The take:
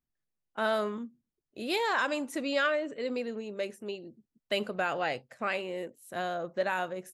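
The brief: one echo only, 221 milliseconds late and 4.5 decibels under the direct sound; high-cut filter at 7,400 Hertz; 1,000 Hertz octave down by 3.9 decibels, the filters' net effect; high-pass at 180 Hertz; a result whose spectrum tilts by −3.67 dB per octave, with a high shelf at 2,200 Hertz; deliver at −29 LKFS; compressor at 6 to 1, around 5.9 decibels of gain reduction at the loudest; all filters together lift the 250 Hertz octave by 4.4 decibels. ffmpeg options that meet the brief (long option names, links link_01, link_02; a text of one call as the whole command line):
ffmpeg -i in.wav -af "highpass=180,lowpass=7400,equalizer=frequency=250:width_type=o:gain=7,equalizer=frequency=1000:width_type=o:gain=-4.5,highshelf=frequency=2200:gain=-6.5,acompressor=threshold=-32dB:ratio=6,aecho=1:1:221:0.596,volume=7.5dB" out.wav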